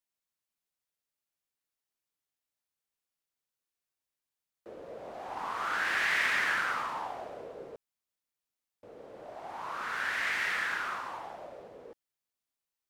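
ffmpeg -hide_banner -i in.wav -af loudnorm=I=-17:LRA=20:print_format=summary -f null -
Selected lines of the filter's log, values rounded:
Input Integrated:    -31.7 LUFS
Input True Peak:     -17.2 dBTP
Input LRA:             5.9 LU
Input Threshold:     -43.8 LUFS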